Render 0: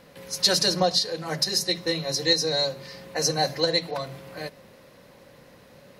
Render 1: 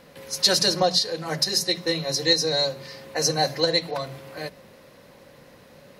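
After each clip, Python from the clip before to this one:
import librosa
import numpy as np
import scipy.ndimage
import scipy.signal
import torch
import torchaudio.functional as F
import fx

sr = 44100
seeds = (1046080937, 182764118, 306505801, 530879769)

y = fx.hum_notches(x, sr, base_hz=60, count=3)
y = F.gain(torch.from_numpy(y), 1.5).numpy()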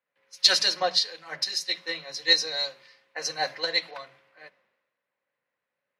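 y = fx.bandpass_q(x, sr, hz=2200.0, q=0.97)
y = fx.band_widen(y, sr, depth_pct=100)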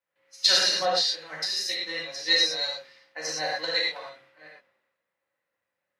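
y = fx.rev_gated(x, sr, seeds[0], gate_ms=140, shape='flat', drr_db=-4.5)
y = F.gain(torch.from_numpy(y), -5.0).numpy()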